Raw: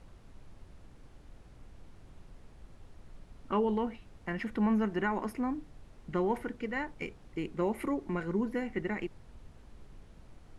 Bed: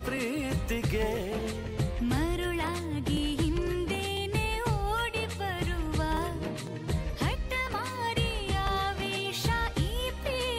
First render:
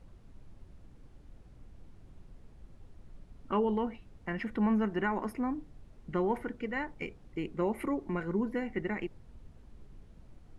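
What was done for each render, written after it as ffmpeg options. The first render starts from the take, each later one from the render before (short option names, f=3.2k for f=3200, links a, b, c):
-af "afftdn=nr=6:nf=-56"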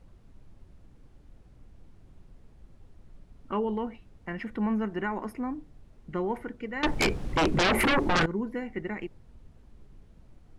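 -filter_complex "[0:a]asettb=1/sr,asplit=3[a][b][c];[a]atrim=end=6.834[d];[b]atrim=start=6.83:end=8.26,asetpts=PTS-STARTPTS,afade=t=in:d=0.004:c=qsin,afade=t=out:st=1.426:d=0.004:c=qsin,aeval=exprs='0.106*sin(PI/2*7.08*val(0)/0.106)':c=same[e];[c]atrim=start=8.256[f];[d][e]acrossfade=d=0.004:c1=hsin:c2=qsin[g];[g][f]acrossfade=d=0.004:c1=qsin:c2=hsin"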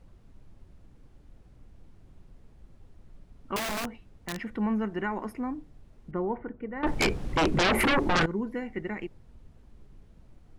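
-filter_complex "[0:a]asettb=1/sr,asplit=3[a][b][c];[a]atrim=end=3.564[d];[b]atrim=start=3.56:end=4.43,asetpts=PTS-STARTPTS,afade=t=in:d=0.004:c=qsin,afade=t=out:st=0.866:d=0.004:c=qsin,aeval=exprs='(mod(22.4*val(0)+1,2)-1)/22.4':c=same[e];[c]atrim=start=4.426[f];[d][e]acrossfade=d=0.004:c1=hsin:c2=qsin[g];[g][f]acrossfade=d=0.004:c1=qsin:c2=hsin,asettb=1/sr,asplit=3[h][i][j];[h]atrim=end=6.114[k];[i]atrim=start=6.11:end=6.87,asetpts=PTS-STARTPTS,afade=t=in:d=0.004:c=qsin,afade=t=out:st=0.756:d=0.004:c=qsin,lowpass=1.4k[l];[j]atrim=start=6.866[m];[k][l]acrossfade=d=0.004:c1=hsin:c2=qsin[n];[n][m]acrossfade=d=0.004:c1=qsin:c2=hsin"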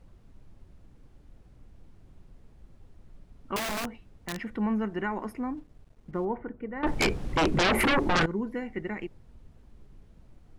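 -filter_complex "[0:a]asettb=1/sr,asplit=3[a][b][c];[a]atrim=end=5.574[d];[b]atrim=start=5.57:end=6.25,asetpts=PTS-STARTPTS,afade=t=in:d=0.004:c=qsin,afade=t=out:st=0.676:d=0.004:c=qsin,aeval=exprs='sgn(val(0))*max(abs(val(0))-0.00112,0)':c=same[e];[c]atrim=start=6.246[f];[d][e]acrossfade=d=0.004:c1=hsin:c2=qsin[g];[g][f]acrossfade=d=0.004:c1=qsin:c2=hsin"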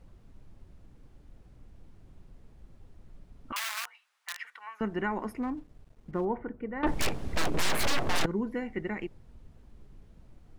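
-filter_complex "[0:a]asettb=1/sr,asplit=3[a][b][c];[a]atrim=end=3.524[d];[b]atrim=start=3.52:end=4.81,asetpts=PTS-STARTPTS,afade=t=in:d=0.004:c=qsin,afade=t=out:st=1.286:d=0.004:c=qsin,highpass=f=1.1k:w=0.5412,highpass=f=1.1k:w=1.3066[e];[c]atrim=start=4.806[f];[d][e]acrossfade=d=0.004:c1=hsin:c2=qsin[g];[g][f]acrossfade=d=0.004:c1=qsin:c2=hsin,asettb=1/sr,asplit=3[h][i][j];[h]atrim=end=5.424[k];[i]atrim=start=5.42:end=6.21,asetpts=PTS-STARTPTS,afade=t=in:d=0.004:c=qsin,afade=t=out:st=0.786:d=0.004:c=qsin,aeval=exprs='clip(val(0),-1,0.0447)':c=same[l];[j]atrim=start=6.206[m];[k][l]acrossfade=d=0.004:c1=hsin:c2=qsin[n];[n][m]acrossfade=d=0.004:c1=qsin:c2=hsin,asettb=1/sr,asplit=3[o][p][q];[o]atrim=end=6.944[r];[p]atrim=start=6.94:end=8.25,asetpts=PTS-STARTPTS,afade=t=in:d=0.004:c=qsin,afade=t=out:st=1.306:d=0.004:c=qsin,aeval=exprs='abs(val(0))':c=same[s];[q]atrim=start=8.246[t];[r][s]acrossfade=d=0.004:c1=hsin:c2=qsin[u];[u][t]acrossfade=d=0.004:c1=qsin:c2=hsin"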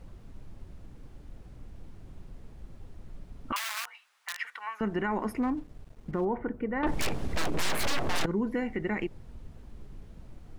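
-filter_complex "[0:a]asplit=2[a][b];[b]acompressor=threshold=-35dB:ratio=6,volume=1dB[c];[a][c]amix=inputs=2:normalize=0,alimiter=limit=-21dB:level=0:latency=1:release=30"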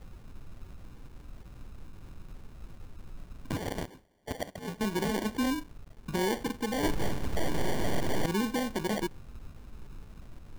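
-af "acrusher=samples=34:mix=1:aa=0.000001"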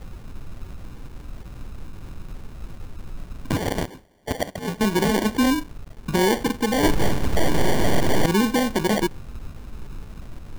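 -af "volume=10dB"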